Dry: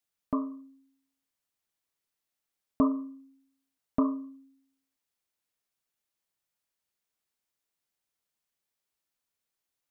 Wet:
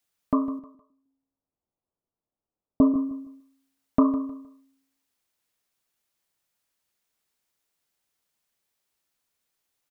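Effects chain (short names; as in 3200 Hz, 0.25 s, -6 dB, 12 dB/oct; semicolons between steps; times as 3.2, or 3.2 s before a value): 0.59–2.94 Bessel low-pass 660 Hz, order 8; feedback echo 0.155 s, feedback 28%, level -14.5 dB; gain +6.5 dB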